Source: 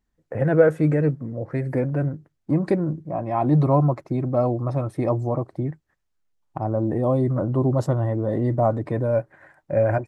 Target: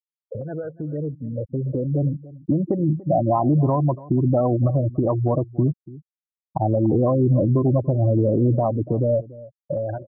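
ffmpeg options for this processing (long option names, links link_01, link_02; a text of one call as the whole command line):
ffmpeg -i in.wav -af "agate=range=-33dB:threshold=-41dB:ratio=3:detection=peak,afftfilt=real='re*gte(hypot(re,im),0.126)':imag='im*gte(hypot(re,im),0.126)':win_size=1024:overlap=0.75,lowpass=1500,equalizer=frequency=1000:width_type=o:width=0.4:gain=4,acompressor=threshold=-23dB:ratio=6,alimiter=limit=-22.5dB:level=0:latency=1:release=435,dynaudnorm=framelen=760:gausssize=5:maxgain=12.5dB,aecho=1:1:288:0.106" out.wav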